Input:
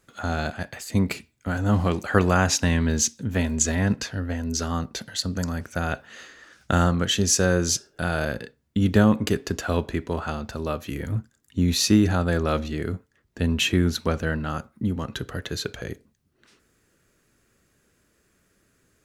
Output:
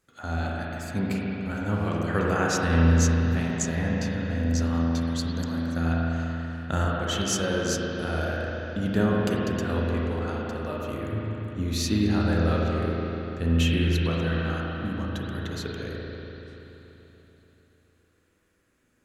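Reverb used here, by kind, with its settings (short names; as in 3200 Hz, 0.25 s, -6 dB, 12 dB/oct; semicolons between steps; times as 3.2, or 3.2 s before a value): spring tank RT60 3.8 s, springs 36/48 ms, chirp 65 ms, DRR -4 dB; gain -8 dB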